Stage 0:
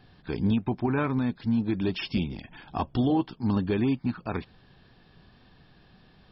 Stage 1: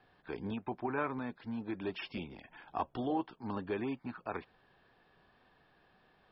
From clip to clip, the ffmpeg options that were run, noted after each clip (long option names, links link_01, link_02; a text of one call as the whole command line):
ffmpeg -i in.wav -filter_complex "[0:a]acrossover=split=370 2600:gain=0.2 1 0.224[link_01][link_02][link_03];[link_01][link_02][link_03]amix=inputs=3:normalize=0,volume=-4dB" out.wav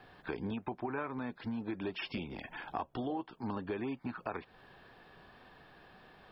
ffmpeg -i in.wav -af "acompressor=threshold=-46dB:ratio=4,volume=9.5dB" out.wav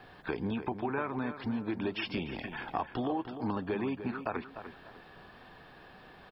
ffmpeg -i in.wav -filter_complex "[0:a]asplit=2[link_01][link_02];[link_02]adelay=299,lowpass=frequency=3400:poles=1,volume=-10dB,asplit=2[link_03][link_04];[link_04]adelay=299,lowpass=frequency=3400:poles=1,volume=0.3,asplit=2[link_05][link_06];[link_06]adelay=299,lowpass=frequency=3400:poles=1,volume=0.3[link_07];[link_01][link_03][link_05][link_07]amix=inputs=4:normalize=0,volume=4dB" out.wav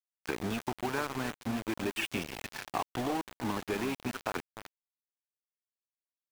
ffmpeg -i in.wav -af "lowpass=frequency=2800:width_type=q:width=1.5,aeval=exprs='val(0)*gte(abs(val(0)),0.0211)':channel_layout=same" out.wav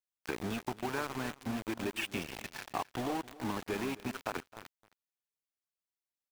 ffmpeg -i in.wav -af "aecho=1:1:264:0.106,volume=-2.5dB" out.wav